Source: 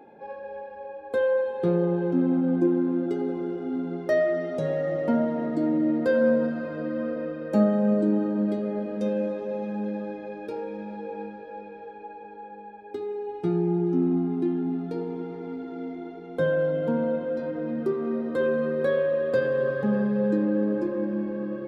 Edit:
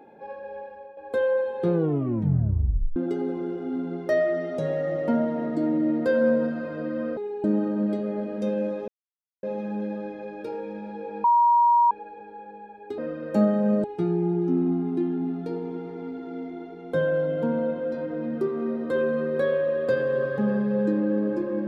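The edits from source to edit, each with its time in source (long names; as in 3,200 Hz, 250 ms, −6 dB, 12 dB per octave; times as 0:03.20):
0:00.66–0:00.97: fade out, to −10.5 dB
0:01.73: tape stop 1.23 s
0:07.17–0:08.03: swap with 0:13.02–0:13.29
0:09.47: splice in silence 0.55 s
0:11.28–0:11.95: beep over 950 Hz −15 dBFS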